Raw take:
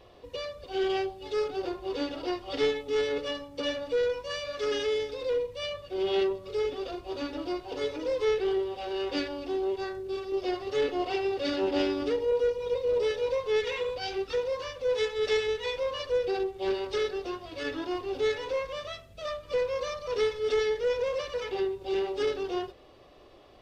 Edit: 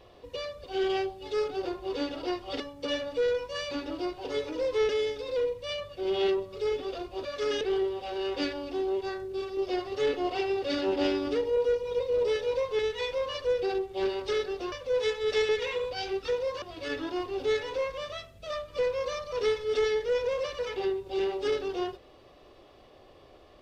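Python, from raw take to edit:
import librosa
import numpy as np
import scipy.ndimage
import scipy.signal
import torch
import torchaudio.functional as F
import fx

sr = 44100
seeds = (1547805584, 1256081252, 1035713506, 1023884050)

y = fx.edit(x, sr, fx.cut(start_s=2.6, length_s=0.75),
    fx.swap(start_s=4.46, length_s=0.36, other_s=7.18, other_length_s=1.18),
    fx.swap(start_s=13.54, length_s=1.13, other_s=15.44, other_length_s=1.93), tone=tone)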